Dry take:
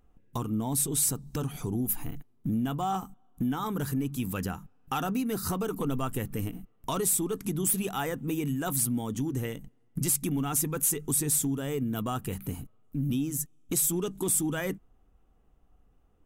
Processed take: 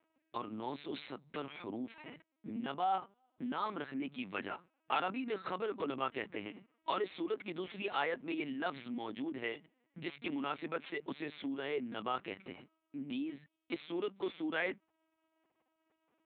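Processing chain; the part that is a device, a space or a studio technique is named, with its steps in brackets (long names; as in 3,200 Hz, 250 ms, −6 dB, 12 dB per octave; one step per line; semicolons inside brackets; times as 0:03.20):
talking toy (linear-prediction vocoder at 8 kHz pitch kept; high-pass filter 380 Hz 12 dB per octave; parametric band 2,200 Hz +7.5 dB 0.59 octaves)
level −2.5 dB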